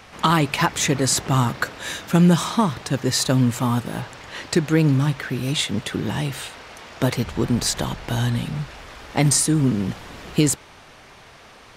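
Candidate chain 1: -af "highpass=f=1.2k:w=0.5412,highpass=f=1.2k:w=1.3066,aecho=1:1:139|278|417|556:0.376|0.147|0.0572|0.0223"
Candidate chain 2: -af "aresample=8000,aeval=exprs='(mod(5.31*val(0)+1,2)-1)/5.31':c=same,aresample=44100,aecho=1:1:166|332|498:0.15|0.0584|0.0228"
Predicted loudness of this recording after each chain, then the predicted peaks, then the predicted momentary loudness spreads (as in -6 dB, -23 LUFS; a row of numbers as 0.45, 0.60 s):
-26.0, -23.5 LUFS; -6.5, -9.5 dBFS; 16, 13 LU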